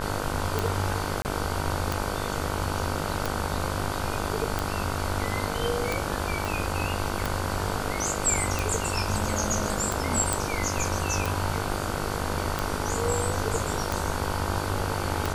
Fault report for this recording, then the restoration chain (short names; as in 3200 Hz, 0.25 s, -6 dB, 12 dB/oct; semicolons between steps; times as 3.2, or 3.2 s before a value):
buzz 50 Hz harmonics 31 -32 dBFS
tick 45 rpm
1.22–1.25 gap 29 ms
6.45 pop
10.33 pop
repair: de-click; de-hum 50 Hz, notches 31; interpolate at 1.22, 29 ms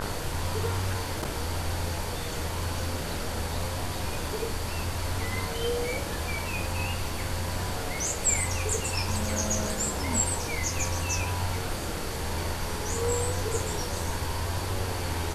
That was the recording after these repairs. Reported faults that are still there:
6.45 pop